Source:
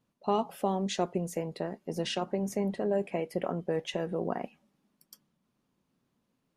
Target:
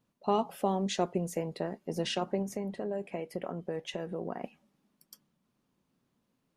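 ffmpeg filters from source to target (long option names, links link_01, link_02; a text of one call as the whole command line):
ffmpeg -i in.wav -filter_complex "[0:a]asettb=1/sr,asplit=3[link_01][link_02][link_03];[link_01]atrim=end=2.424[link_04];[link_02]atrim=start=2.42:end=4.44,asetpts=PTS-STARTPTS,afade=type=in:duration=0.004:curve=qsin,afade=type=out:start_time=2.016:duration=0.004:curve=qsin,acompressor=threshold=-36dB:ratio=2[link_05];[link_03]atrim=start=4.436[link_06];[link_04][link_05]acrossfade=duration=0.004:curve1=hsin:curve2=qsin[link_07];[link_07][link_06]acrossfade=duration=0.004:curve1=qsin:curve2=hsin" out.wav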